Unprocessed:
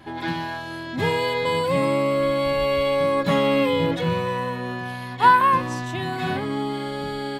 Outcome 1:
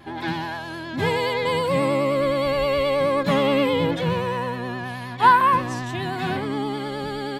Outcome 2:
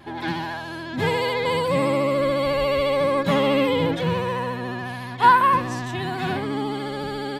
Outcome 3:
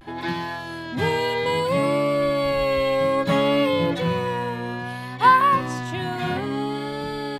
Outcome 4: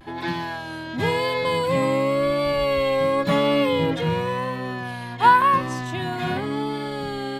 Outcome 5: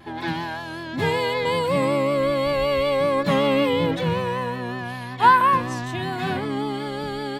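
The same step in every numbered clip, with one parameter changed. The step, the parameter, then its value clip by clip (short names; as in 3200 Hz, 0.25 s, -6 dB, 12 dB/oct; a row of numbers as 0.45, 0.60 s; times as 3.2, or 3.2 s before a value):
vibrato, rate: 9.5, 14, 0.6, 0.93, 5.3 Hz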